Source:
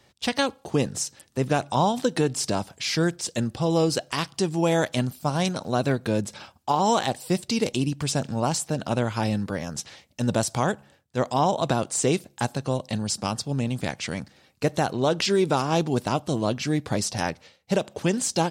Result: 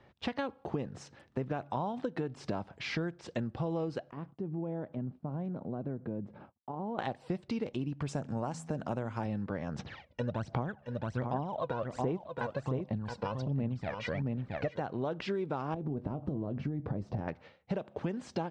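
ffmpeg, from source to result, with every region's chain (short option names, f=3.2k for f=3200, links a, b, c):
-filter_complex "[0:a]asettb=1/sr,asplit=3[a][b][c];[a]atrim=end=4.114[d];[b]atrim=start=4.11:end=6.99,asetpts=PTS-STARTPTS,afade=t=in:d=0.004:c=qsin,afade=t=out:st=2.876:d=0.004:c=qsin,agate=range=-33dB:threshold=-43dB:ratio=3:release=100:detection=peak,acompressor=threshold=-34dB:ratio=2.5:attack=3.2:release=140:knee=1:detection=peak,bandpass=f=210:t=q:w=0.64[e];[c]atrim=start=6.986[f];[d][e]acrossfade=d=0.004:c1=hsin:c2=qsin[g];[g][f]acrossfade=d=0.004:c1=qsin:c2=hsin,asettb=1/sr,asplit=3[h][i][j];[h]atrim=end=8.084[k];[i]atrim=start=8.08:end=9.26,asetpts=PTS-STARTPTS,afade=t=in:d=0.004:c=qsin,afade=t=out:st=1.176:d=0.004:c=qsin,highpass=50,highshelf=f=5.4k:t=q:w=1.5:g=10,bandreject=f=81.16:t=h:w=4,bandreject=f=162.32:t=h:w=4,bandreject=f=243.48:t=h:w=4[l];[j]atrim=start=9.256[m];[k][l]acrossfade=d=0.004:c1=hsin:c2=qsin[n];[n][m]acrossfade=d=0.004:c1=qsin:c2=hsin,asettb=1/sr,asplit=3[o][p][q];[o]atrim=end=9.794[r];[p]atrim=start=9.79:end=14.8,asetpts=PTS-STARTPTS,afade=t=in:d=0.004:c=qsin,afade=t=out:st=5.006:d=0.004:c=qsin,lowpass=6.7k,aphaser=in_gain=1:out_gain=1:delay=2.1:decay=0.71:speed=1.3:type=sinusoidal,aecho=1:1:672:0.398,atrim=end_sample=220941[s];[q]atrim=start=14.796[t];[r][s]acrossfade=d=0.004:c1=hsin:c2=qsin[u];[u][t]acrossfade=d=0.004:c1=qsin:c2=hsin,asettb=1/sr,asplit=3[v][w][x];[v]atrim=end=15.744[y];[w]atrim=start=15.74:end=17.28,asetpts=PTS-STARTPTS,afade=t=in:d=0.004:c=qsin,afade=t=out:st=1.536:d=0.004:c=qsin,acompressor=threshold=-30dB:ratio=12:attack=3.2:release=140:knee=1:detection=peak,tiltshelf=f=880:g=10,asplit=2[z][aa];[aa]adelay=21,volume=-13dB[ab];[z][ab]amix=inputs=2:normalize=0,atrim=end_sample=67914[ac];[x]atrim=start=17.276[ad];[y][ac]acrossfade=d=0.004:c1=hsin:c2=qsin[ae];[ae][ad]acrossfade=d=0.004:c1=qsin:c2=hsin,lowpass=1.9k,acompressor=threshold=-32dB:ratio=6"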